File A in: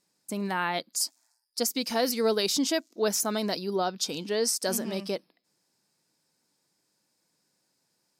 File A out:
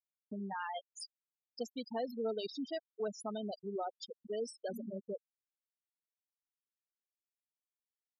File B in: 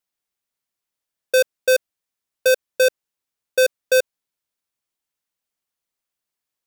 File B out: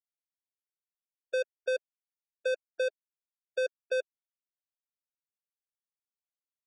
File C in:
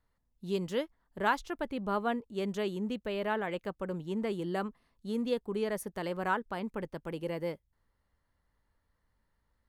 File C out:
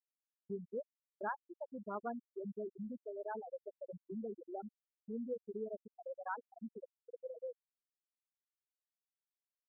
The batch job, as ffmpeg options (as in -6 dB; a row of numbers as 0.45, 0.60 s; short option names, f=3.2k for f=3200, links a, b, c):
-af "equalizer=f=160:t=o:w=0.33:g=-8,equalizer=f=315:t=o:w=0.33:g=-9,equalizer=f=3.15k:t=o:w=0.33:g=7,afftfilt=real='re*gte(hypot(re,im),0.112)':imag='im*gte(hypot(re,im),0.112)':win_size=1024:overlap=0.75,agate=range=-33dB:threshold=-53dB:ratio=3:detection=peak,highshelf=f=3.1k:g=-11.5,acompressor=threshold=-44dB:ratio=1.5,volume=-2.5dB"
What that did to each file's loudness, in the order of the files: -13.5, -14.0, -11.0 LU